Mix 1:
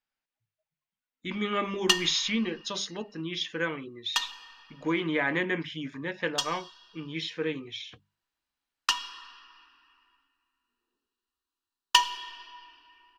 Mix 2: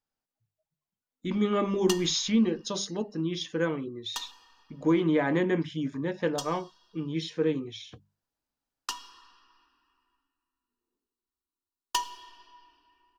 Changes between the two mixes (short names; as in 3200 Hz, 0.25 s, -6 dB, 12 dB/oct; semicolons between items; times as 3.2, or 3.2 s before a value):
speech +6.5 dB; master: add bell 2300 Hz -14 dB 2.1 oct